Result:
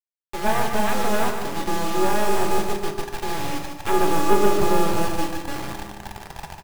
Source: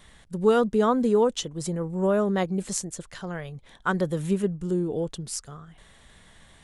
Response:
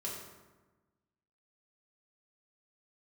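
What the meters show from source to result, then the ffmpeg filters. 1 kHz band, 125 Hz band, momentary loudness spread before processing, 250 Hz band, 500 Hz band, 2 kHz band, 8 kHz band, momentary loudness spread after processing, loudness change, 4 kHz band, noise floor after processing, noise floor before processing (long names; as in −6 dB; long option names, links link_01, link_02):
+9.0 dB, −1.0 dB, 16 LU, 0.0 dB, +1.0 dB, +7.0 dB, +2.0 dB, 15 LU, +2.0 dB, +6.5 dB, −52 dBFS, −54 dBFS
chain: -filter_complex "[0:a]lowpass=1200,asubboost=boost=7.5:cutoff=180,aeval=exprs='val(0)*sin(2*PI*420*n/s)':channel_layout=same,aresample=8000,aeval=exprs='abs(val(0))':channel_layout=same,aresample=44100,acrusher=bits=3:dc=4:mix=0:aa=0.000001,aecho=1:1:148|296|444|592|740:0.447|0.174|0.0679|0.0265|0.0103,asplit=2[link_01][link_02];[1:a]atrim=start_sample=2205[link_03];[link_02][link_03]afir=irnorm=-1:irlink=0,volume=-1dB[link_04];[link_01][link_04]amix=inputs=2:normalize=0"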